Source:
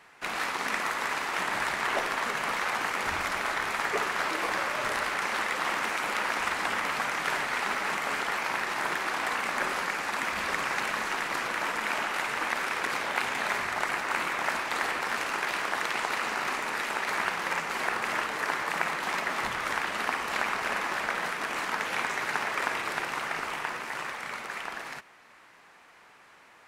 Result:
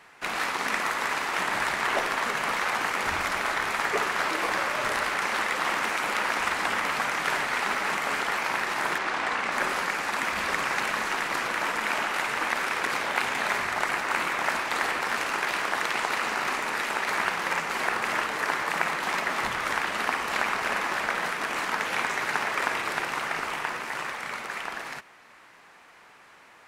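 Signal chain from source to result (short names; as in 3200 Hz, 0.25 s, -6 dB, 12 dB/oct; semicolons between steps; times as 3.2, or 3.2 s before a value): 8.98–9.52 air absorption 60 m; gain +2.5 dB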